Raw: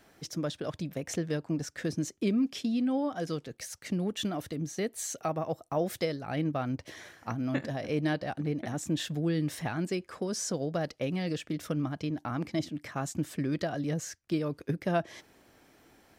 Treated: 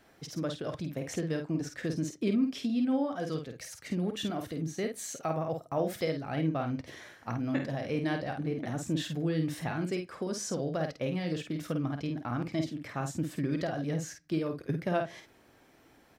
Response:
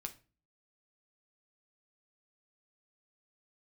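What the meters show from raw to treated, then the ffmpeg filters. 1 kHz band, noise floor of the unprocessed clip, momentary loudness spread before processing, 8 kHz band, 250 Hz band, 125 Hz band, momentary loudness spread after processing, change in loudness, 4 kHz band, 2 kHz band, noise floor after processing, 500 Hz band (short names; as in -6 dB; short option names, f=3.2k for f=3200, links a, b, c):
-0.5 dB, -63 dBFS, 6 LU, -3.5 dB, -0.5 dB, 0.0 dB, 6 LU, -0.5 dB, -2.0 dB, -0.5 dB, -61 dBFS, 0.0 dB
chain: -filter_complex "[0:a]asplit=2[a][b];[b]adelay=50,volume=-6dB[c];[a][c]amix=inputs=2:normalize=0,asplit=2[d][e];[1:a]atrim=start_sample=2205,lowpass=5.1k[f];[e][f]afir=irnorm=-1:irlink=0,volume=-5dB[g];[d][g]amix=inputs=2:normalize=0,volume=-4dB"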